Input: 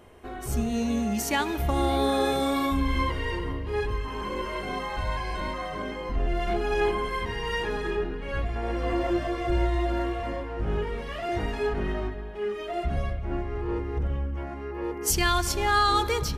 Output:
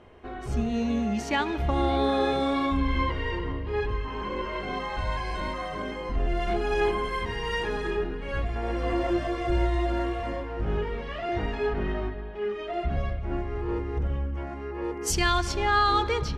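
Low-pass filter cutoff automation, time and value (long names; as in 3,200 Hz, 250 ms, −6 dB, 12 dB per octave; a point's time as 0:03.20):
0:04.50 4,100 Hz
0:05.32 10,000 Hz
0:10.27 10,000 Hz
0:11.00 4,300 Hz
0:12.96 4,300 Hz
0:13.39 9,200 Hz
0:14.94 9,200 Hz
0:15.71 4,100 Hz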